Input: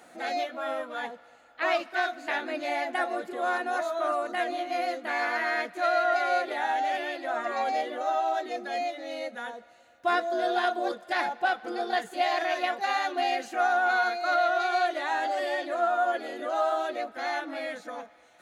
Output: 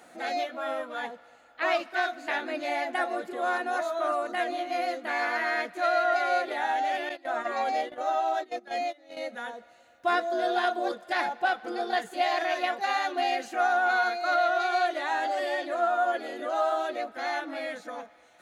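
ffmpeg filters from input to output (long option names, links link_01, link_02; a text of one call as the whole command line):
ffmpeg -i in.wav -filter_complex "[0:a]asettb=1/sr,asplit=3[link_01][link_02][link_03];[link_01]atrim=end=7.094[link_04];[link_02]atrim=start=7.09:end=9.17,asetpts=PTS-STARTPTS,afade=type=in:duration=0.004:curve=qsin,afade=type=out:start_time=2.076:duration=0.004:curve=qsin,agate=range=-17dB:threshold=-35dB:ratio=16:release=100:detection=peak[link_05];[link_03]atrim=start=9.166[link_06];[link_04][link_05]acrossfade=duration=0.004:curve1=hsin:curve2=qsin[link_07];[link_07][link_06]acrossfade=duration=0.004:curve1=qsin:curve2=hsin" out.wav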